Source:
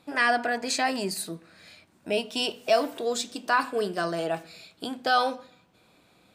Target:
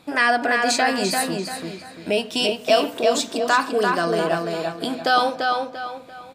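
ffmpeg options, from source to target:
-filter_complex "[0:a]asplit=2[a][b];[b]acompressor=threshold=-31dB:ratio=6,volume=-2.5dB[c];[a][c]amix=inputs=2:normalize=0,asplit=2[d][e];[e]adelay=342,lowpass=f=4.7k:p=1,volume=-3.5dB,asplit=2[f][g];[g]adelay=342,lowpass=f=4.7k:p=1,volume=0.36,asplit=2[h][i];[i]adelay=342,lowpass=f=4.7k:p=1,volume=0.36,asplit=2[j][k];[k]adelay=342,lowpass=f=4.7k:p=1,volume=0.36,asplit=2[l][m];[m]adelay=342,lowpass=f=4.7k:p=1,volume=0.36[n];[d][f][h][j][l][n]amix=inputs=6:normalize=0,volume=3dB"

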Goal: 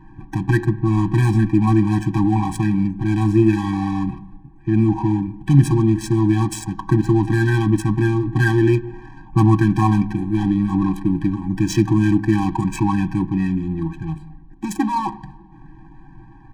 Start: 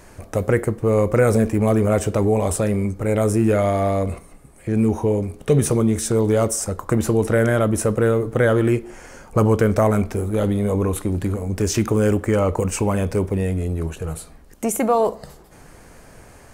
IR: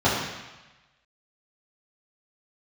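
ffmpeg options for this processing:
-filter_complex "[0:a]highshelf=f=9.2k:g=-3,aecho=1:1:6.3:0.69,adynamicsmooth=sensitivity=4:basefreq=890,asplit=2[a][b];[1:a]atrim=start_sample=2205,highshelf=f=4.4k:g=-10.5[c];[b][c]afir=irnorm=-1:irlink=0,volume=-33.5dB[d];[a][d]amix=inputs=2:normalize=0,afftfilt=real='re*eq(mod(floor(b*sr/1024/380),2),0)':imag='im*eq(mod(floor(b*sr/1024/380),2),0)':win_size=1024:overlap=0.75,volume=2.5dB"

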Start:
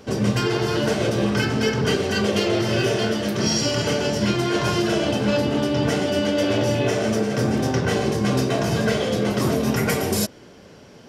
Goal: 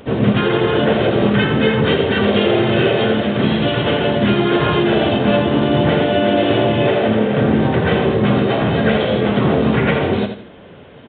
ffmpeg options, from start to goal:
-filter_complex "[0:a]asplit=3[a][b][c];[b]asetrate=37084,aresample=44100,atempo=1.18921,volume=-16dB[d];[c]asetrate=52444,aresample=44100,atempo=0.840896,volume=-6dB[e];[a][d][e]amix=inputs=3:normalize=0,asplit=2[f][g];[g]aecho=0:1:83|166|249:0.398|0.115|0.0335[h];[f][h]amix=inputs=2:normalize=0,aresample=8000,aresample=44100,volume=4.5dB"

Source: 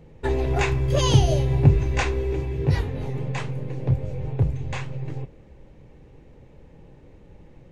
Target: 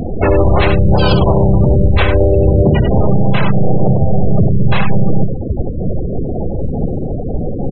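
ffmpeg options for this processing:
-filter_complex "[0:a]lowshelf=f=260:g=-3,aresample=8000,asoftclip=type=tanh:threshold=-20dB,aresample=44100,acompressor=threshold=-40dB:ratio=12,asplit=2[a][b];[b]aecho=0:1:61|94:0.376|0.501[c];[a][c]amix=inputs=2:normalize=0,asplit=4[d][e][f][g];[e]asetrate=35002,aresample=44100,atempo=1.25992,volume=-6dB[h];[f]asetrate=55563,aresample=44100,atempo=0.793701,volume=-5dB[i];[g]asetrate=66075,aresample=44100,atempo=0.66742,volume=-2dB[j];[d][h][i][j]amix=inputs=4:normalize=0,afftfilt=real='re*gte(hypot(re,im),0.01)':imag='im*gte(hypot(re,im),0.01)':win_size=1024:overlap=0.75,alimiter=level_in=29dB:limit=-1dB:release=50:level=0:latency=1,volume=-1dB"

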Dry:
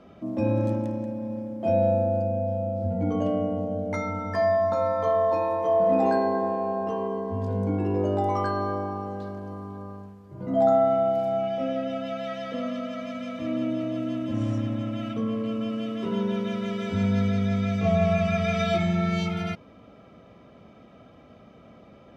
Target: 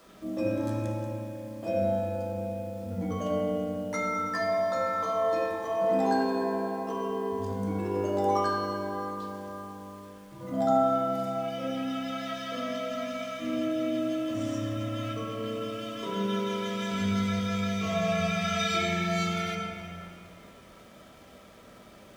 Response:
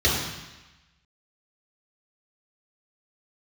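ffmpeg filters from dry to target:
-filter_complex "[0:a]bass=f=250:g=-9,treble=f=4k:g=14,acrusher=bits=8:mix=0:aa=0.000001,asplit=2[a][b];[1:a]atrim=start_sample=2205,asetrate=22491,aresample=44100[c];[b][c]afir=irnorm=-1:irlink=0,volume=-19dB[d];[a][d]amix=inputs=2:normalize=0,volume=-4.5dB"

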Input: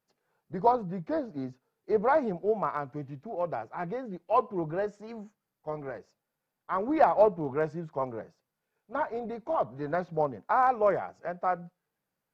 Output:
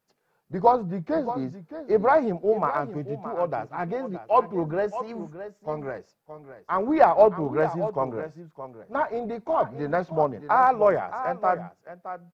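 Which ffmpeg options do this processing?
-af "aecho=1:1:619:0.251,volume=5dB"

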